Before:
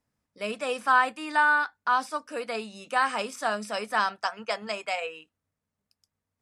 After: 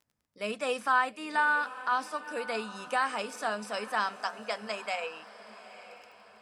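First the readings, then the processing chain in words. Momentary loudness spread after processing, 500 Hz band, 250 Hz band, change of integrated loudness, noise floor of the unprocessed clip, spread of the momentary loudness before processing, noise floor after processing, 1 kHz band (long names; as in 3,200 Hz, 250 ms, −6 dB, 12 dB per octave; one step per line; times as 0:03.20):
22 LU, −2.5 dB, −3.0 dB, −4.0 dB, below −85 dBFS, 12 LU, −74 dBFS, −4.0 dB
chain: camcorder AGC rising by 5.1 dB per second
surface crackle 15 per second −46 dBFS
feedback delay with all-pass diffusion 900 ms, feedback 42%, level −15 dB
level −4.5 dB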